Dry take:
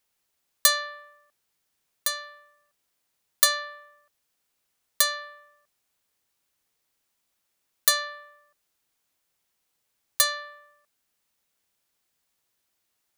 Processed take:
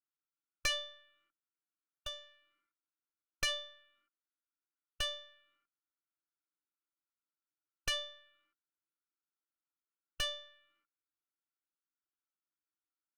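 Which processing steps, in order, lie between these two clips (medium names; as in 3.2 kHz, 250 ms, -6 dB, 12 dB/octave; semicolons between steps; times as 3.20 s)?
two resonant band-passes 590 Hz, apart 1.8 oct; Chebyshev shaper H 3 -12 dB, 6 -13 dB, 7 -43 dB, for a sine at -23 dBFS; formant shift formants +3 st; trim +3.5 dB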